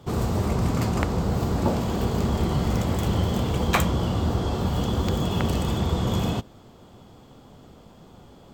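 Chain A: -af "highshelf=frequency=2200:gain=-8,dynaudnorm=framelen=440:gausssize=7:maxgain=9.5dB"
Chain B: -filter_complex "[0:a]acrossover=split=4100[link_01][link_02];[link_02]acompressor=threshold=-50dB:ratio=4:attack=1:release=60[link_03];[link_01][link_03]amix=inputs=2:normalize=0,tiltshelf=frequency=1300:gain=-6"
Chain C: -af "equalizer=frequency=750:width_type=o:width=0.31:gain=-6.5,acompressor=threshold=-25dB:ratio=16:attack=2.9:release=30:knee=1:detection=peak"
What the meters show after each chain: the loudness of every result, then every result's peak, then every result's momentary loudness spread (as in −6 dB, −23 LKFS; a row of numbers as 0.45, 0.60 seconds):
−19.0, −29.0, −29.0 LKFS; −2.5, −6.5, −14.5 dBFS; 7, 4, 1 LU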